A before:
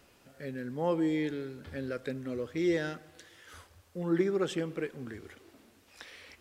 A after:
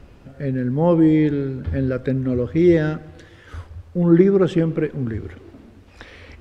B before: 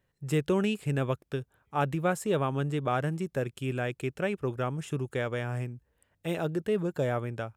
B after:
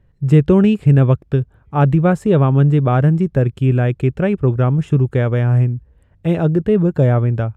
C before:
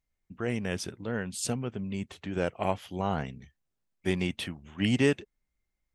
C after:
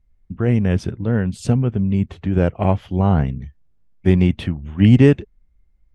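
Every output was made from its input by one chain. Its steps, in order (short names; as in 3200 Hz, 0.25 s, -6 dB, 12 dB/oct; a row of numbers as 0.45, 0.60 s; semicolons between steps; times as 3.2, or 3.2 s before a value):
RIAA curve playback; normalise peaks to -1.5 dBFS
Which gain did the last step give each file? +9.5, +9.0, +7.0 dB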